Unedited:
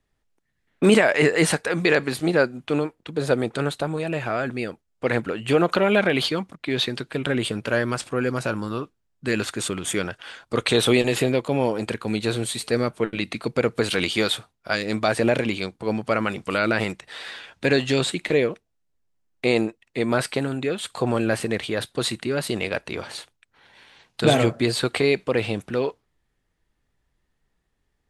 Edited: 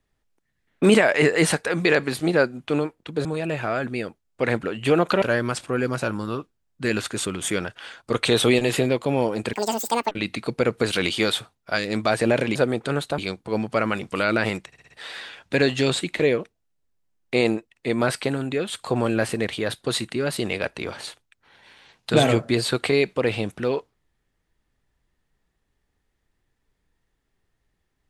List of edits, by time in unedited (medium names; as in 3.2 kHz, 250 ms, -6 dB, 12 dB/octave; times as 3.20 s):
3.25–3.88 s: move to 15.53 s
5.85–7.65 s: delete
11.96–13.09 s: speed 194%
17.01 s: stutter 0.06 s, 5 plays